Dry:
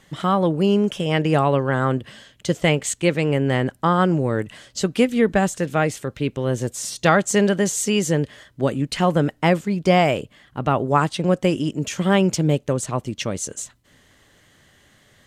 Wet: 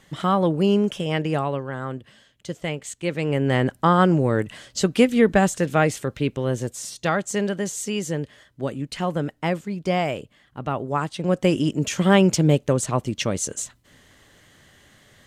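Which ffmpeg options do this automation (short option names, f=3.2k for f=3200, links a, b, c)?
-af "volume=18dB,afade=t=out:st=0.75:d=0.95:silence=0.354813,afade=t=in:st=2.96:d=0.7:silence=0.281838,afade=t=out:st=6.07:d=0.92:silence=0.421697,afade=t=in:st=11.14:d=0.45:silence=0.398107"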